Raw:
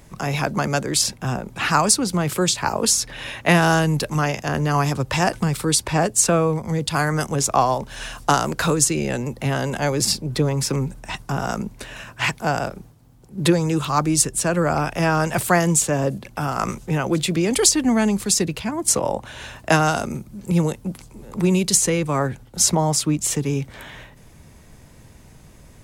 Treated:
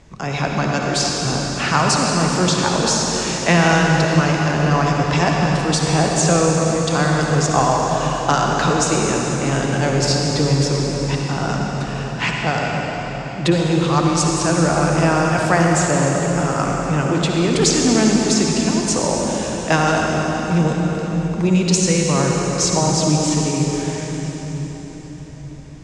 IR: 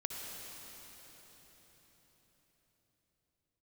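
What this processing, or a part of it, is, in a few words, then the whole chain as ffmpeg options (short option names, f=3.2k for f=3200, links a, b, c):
cathedral: -filter_complex "[1:a]atrim=start_sample=2205[a];[0:a][a]afir=irnorm=-1:irlink=0,lowpass=f=7k:w=0.5412,lowpass=f=7k:w=1.3066,volume=2.5dB"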